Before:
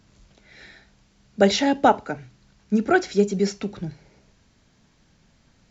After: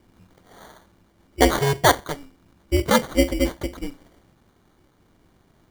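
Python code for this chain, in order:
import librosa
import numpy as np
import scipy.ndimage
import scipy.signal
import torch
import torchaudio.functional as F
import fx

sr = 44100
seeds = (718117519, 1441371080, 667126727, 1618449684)

y = x * np.sin(2.0 * np.pi * 140.0 * np.arange(len(x)) / sr)
y = fx.sample_hold(y, sr, seeds[0], rate_hz=2600.0, jitter_pct=0)
y = y * librosa.db_to_amplitude(3.5)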